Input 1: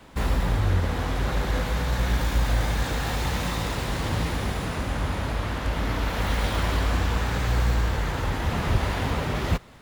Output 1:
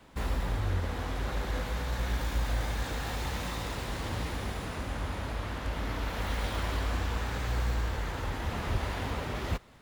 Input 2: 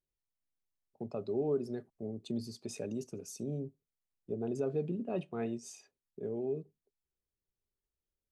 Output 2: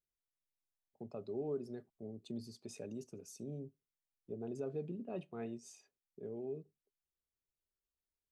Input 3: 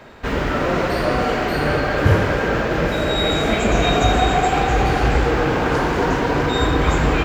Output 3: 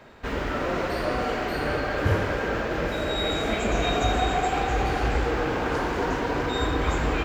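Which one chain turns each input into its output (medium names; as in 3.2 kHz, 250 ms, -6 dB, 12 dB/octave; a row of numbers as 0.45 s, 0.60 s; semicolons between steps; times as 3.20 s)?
dynamic bell 150 Hz, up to -5 dB, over -36 dBFS, Q 2; trim -7 dB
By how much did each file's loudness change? -7.5 LU, -7.0 LU, -7.5 LU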